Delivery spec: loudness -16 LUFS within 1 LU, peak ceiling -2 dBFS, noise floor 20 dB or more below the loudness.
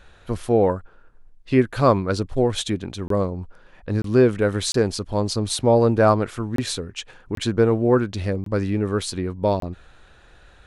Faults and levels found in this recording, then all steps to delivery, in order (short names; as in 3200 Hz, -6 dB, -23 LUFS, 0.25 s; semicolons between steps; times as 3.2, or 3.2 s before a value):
dropouts 7; longest dropout 23 ms; loudness -21.5 LUFS; peak -4.5 dBFS; loudness target -16.0 LUFS
-> interpolate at 3.08/4.02/4.72/6.56/7.35/8.44/9.6, 23 ms; gain +5.5 dB; limiter -2 dBFS